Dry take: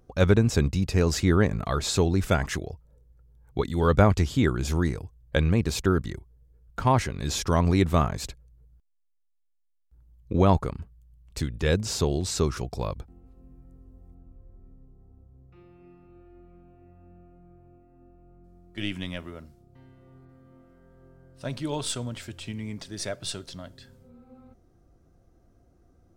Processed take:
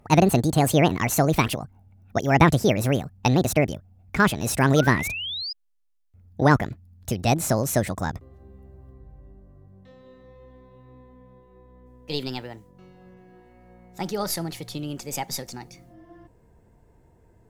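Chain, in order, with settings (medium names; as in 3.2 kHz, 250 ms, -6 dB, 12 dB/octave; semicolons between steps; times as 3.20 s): gliding tape speed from 168% -> 131%; painted sound rise, 4.76–5.53 s, 1.3–5.1 kHz -34 dBFS; trim +3 dB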